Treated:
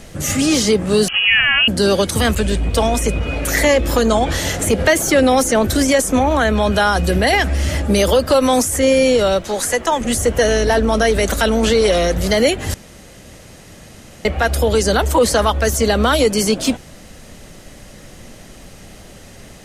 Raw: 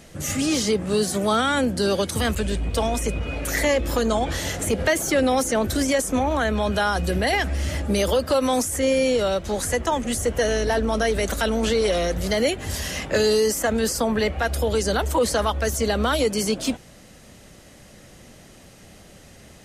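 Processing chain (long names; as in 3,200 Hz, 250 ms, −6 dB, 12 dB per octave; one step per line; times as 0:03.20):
0:09.42–0:10.01: high-pass filter 390 Hz 6 dB per octave
background noise brown −50 dBFS
0:01.08–0:01.68: voice inversion scrambler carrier 3,100 Hz
0:12.74–0:14.25: fill with room tone
level +7 dB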